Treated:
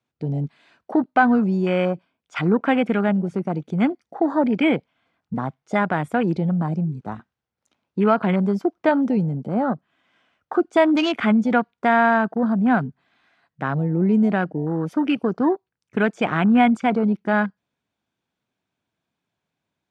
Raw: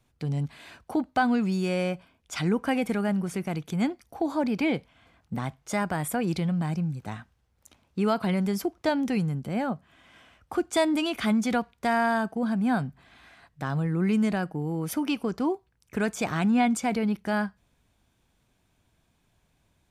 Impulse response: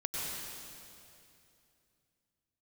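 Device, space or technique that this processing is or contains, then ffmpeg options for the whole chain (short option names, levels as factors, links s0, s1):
over-cleaned archive recording: -af "highpass=160,lowpass=5700,afwtdn=0.0158,equalizer=f=1400:w=6.3:g=2.5,volume=2.37"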